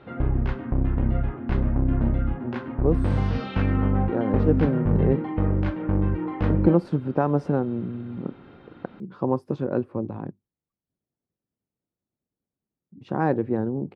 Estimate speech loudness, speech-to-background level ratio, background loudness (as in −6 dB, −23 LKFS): −26.5 LKFS, −1.0 dB, −25.5 LKFS